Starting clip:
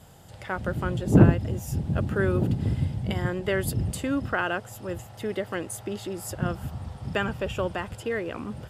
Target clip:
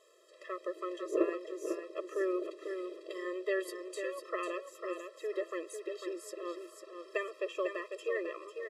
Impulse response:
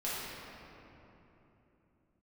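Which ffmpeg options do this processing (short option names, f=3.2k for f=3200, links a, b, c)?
-filter_complex "[0:a]lowpass=7.8k,asplit=2[a][b];[b]aecho=0:1:498|996|1494:0.447|0.116|0.0302[c];[a][c]amix=inputs=2:normalize=0,afftfilt=real='re*eq(mod(floor(b*sr/1024/340),2),1)':imag='im*eq(mod(floor(b*sr/1024/340),2),1)':win_size=1024:overlap=0.75,volume=-5.5dB"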